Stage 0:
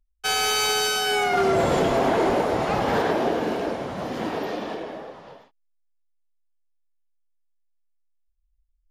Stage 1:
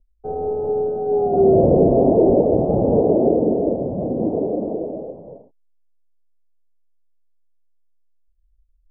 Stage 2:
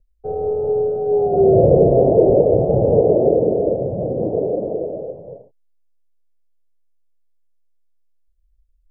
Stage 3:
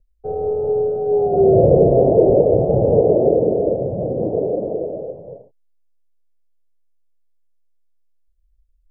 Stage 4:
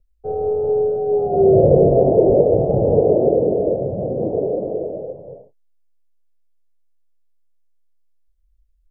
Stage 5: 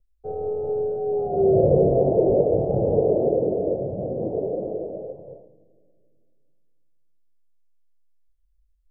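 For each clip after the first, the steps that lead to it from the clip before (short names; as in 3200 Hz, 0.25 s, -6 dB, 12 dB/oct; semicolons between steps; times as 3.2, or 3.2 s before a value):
Wiener smoothing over 9 samples; steep low-pass 620 Hz 36 dB/oct; gain +9 dB
ten-band EQ 125 Hz +7 dB, 250 Hz -9 dB, 500 Hz +7 dB, 1000 Hz -6 dB
nothing audible
doubler 21 ms -11 dB; gain -1 dB
reverb RT60 2.0 s, pre-delay 5 ms, DRR 15.5 dB; gain -5.5 dB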